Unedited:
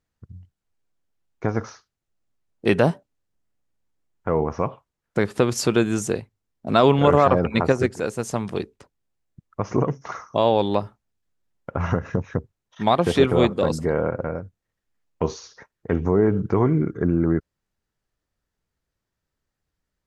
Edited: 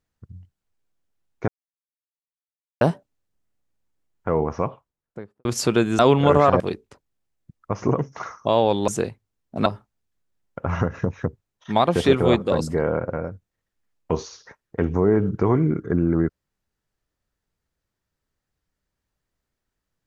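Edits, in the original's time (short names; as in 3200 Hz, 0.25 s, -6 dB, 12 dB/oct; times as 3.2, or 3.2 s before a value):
1.48–2.81 mute
4.55–5.45 studio fade out
5.99–6.77 move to 10.77
7.38–8.49 cut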